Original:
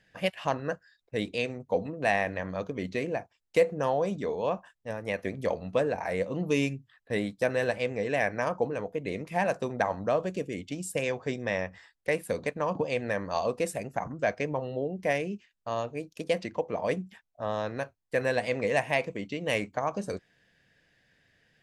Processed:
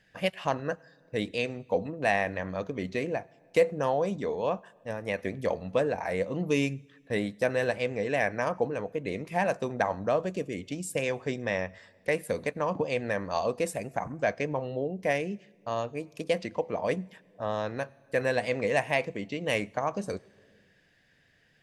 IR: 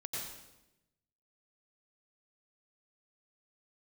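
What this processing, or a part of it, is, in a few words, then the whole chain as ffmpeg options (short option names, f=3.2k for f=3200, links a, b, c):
compressed reverb return: -filter_complex "[0:a]asplit=2[a][b];[1:a]atrim=start_sample=2205[c];[b][c]afir=irnorm=-1:irlink=0,acompressor=threshold=-43dB:ratio=5,volume=-12.5dB[d];[a][d]amix=inputs=2:normalize=0"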